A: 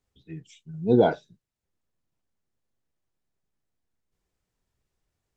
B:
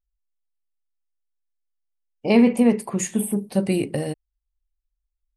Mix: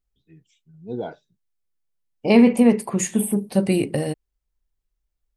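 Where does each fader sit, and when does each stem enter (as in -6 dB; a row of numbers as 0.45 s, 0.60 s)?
-11.0 dB, +2.0 dB; 0.00 s, 0.00 s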